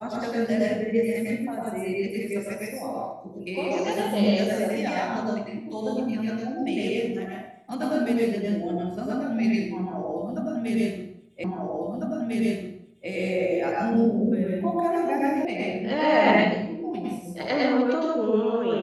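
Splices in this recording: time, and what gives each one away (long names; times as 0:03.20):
0:11.44: the same again, the last 1.65 s
0:15.45: cut off before it has died away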